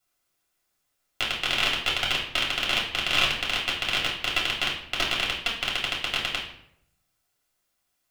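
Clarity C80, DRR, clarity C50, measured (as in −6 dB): 9.5 dB, −5.0 dB, 6.0 dB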